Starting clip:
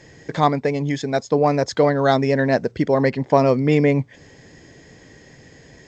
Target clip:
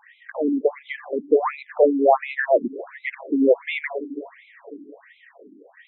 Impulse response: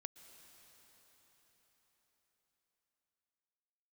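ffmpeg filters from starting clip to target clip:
-filter_complex "[0:a]asplit=2[s0][s1];[1:a]atrim=start_sample=2205,highshelf=f=3800:g=-8[s2];[s1][s2]afir=irnorm=-1:irlink=0,volume=1.06[s3];[s0][s3]amix=inputs=2:normalize=0,afftfilt=real='re*between(b*sr/1024,260*pow(2900/260,0.5+0.5*sin(2*PI*1.4*pts/sr))/1.41,260*pow(2900/260,0.5+0.5*sin(2*PI*1.4*pts/sr))*1.41)':imag='im*between(b*sr/1024,260*pow(2900/260,0.5+0.5*sin(2*PI*1.4*pts/sr))/1.41,260*pow(2900/260,0.5+0.5*sin(2*PI*1.4*pts/sr))*1.41)':win_size=1024:overlap=0.75"

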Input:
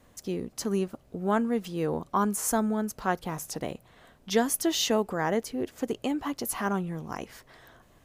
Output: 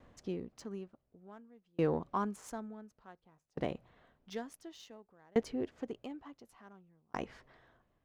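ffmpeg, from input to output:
-af "adynamicsmooth=sensitivity=3.5:basefreq=3500,aeval=exprs='val(0)*pow(10,-37*if(lt(mod(0.56*n/s,1),2*abs(0.56)/1000),1-mod(0.56*n/s,1)/(2*abs(0.56)/1000),(mod(0.56*n/s,1)-2*abs(0.56)/1000)/(1-2*abs(0.56)/1000))/20)':c=same"

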